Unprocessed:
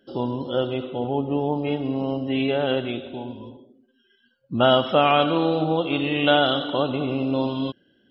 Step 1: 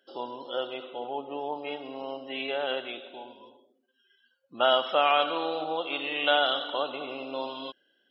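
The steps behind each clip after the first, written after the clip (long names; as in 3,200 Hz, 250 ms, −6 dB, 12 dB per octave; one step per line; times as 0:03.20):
high-pass filter 620 Hz 12 dB per octave
level −3 dB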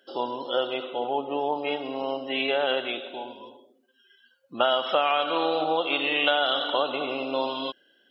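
downward compressor 6 to 1, threshold −26 dBFS, peak gain reduction 8.5 dB
level +7 dB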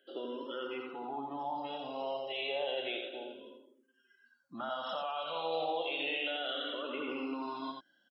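brickwall limiter −20 dBFS, peak gain reduction 11.5 dB
single-tap delay 86 ms −5 dB
frequency shifter mixed with the dry sound −0.31 Hz
level −5.5 dB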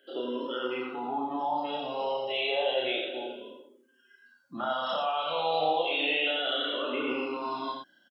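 double-tracking delay 32 ms −2.5 dB
level +5.5 dB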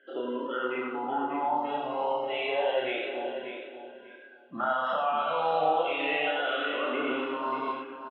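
low-pass with resonance 1,800 Hz, resonance Q 2
repeating echo 589 ms, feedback 20%, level −9 dB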